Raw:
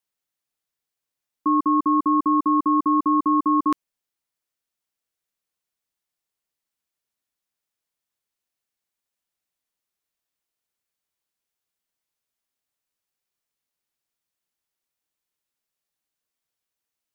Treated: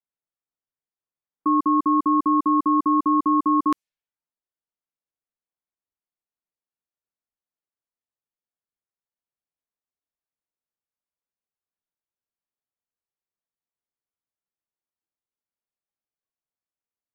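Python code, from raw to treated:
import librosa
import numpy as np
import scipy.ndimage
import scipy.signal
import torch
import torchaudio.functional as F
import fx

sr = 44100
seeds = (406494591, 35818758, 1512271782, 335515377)

y = fx.env_lowpass(x, sr, base_hz=1400.0, full_db=-19.0)
y = fx.noise_reduce_blind(y, sr, reduce_db=7)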